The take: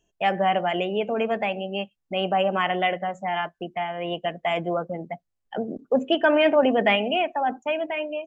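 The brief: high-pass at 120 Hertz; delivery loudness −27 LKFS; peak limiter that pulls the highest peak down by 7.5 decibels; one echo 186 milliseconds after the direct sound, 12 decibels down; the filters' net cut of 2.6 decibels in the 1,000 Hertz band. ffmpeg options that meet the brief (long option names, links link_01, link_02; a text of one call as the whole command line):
ffmpeg -i in.wav -af "highpass=120,equalizer=frequency=1000:width_type=o:gain=-4,alimiter=limit=-17dB:level=0:latency=1,aecho=1:1:186:0.251,volume=1dB" out.wav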